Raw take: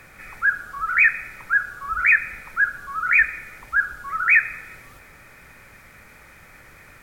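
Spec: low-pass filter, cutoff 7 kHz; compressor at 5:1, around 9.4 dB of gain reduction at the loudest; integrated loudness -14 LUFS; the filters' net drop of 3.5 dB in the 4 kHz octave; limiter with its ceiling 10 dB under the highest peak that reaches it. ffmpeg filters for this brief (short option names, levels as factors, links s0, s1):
-af "lowpass=7000,equalizer=f=4000:t=o:g=-4,acompressor=threshold=0.0708:ratio=5,volume=7.5,alimiter=limit=0.531:level=0:latency=1"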